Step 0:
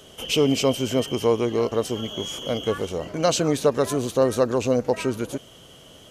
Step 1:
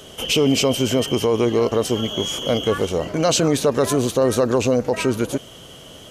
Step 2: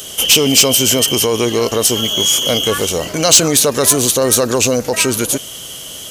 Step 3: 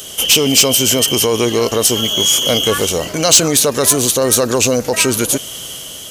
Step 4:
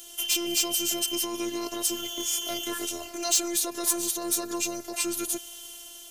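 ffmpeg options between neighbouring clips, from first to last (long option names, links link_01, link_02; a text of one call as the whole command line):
ffmpeg -i in.wav -af "alimiter=limit=-15.5dB:level=0:latency=1:release=21,volume=6.5dB" out.wav
ffmpeg -i in.wav -af "crystalizer=i=6:c=0,asoftclip=type=tanh:threshold=-3dB,volume=2dB" out.wav
ffmpeg -i in.wav -af "dynaudnorm=framelen=120:gausssize=7:maxgain=11.5dB,volume=-1dB" out.wav
ffmpeg -i in.wav -filter_complex "[0:a]acrossover=split=320[link_01][link_02];[link_02]crystalizer=i=0.5:c=0[link_03];[link_01][link_03]amix=inputs=2:normalize=0,afftfilt=real='hypot(re,im)*cos(PI*b)':imag='0':win_size=512:overlap=0.75,volume=-13dB" out.wav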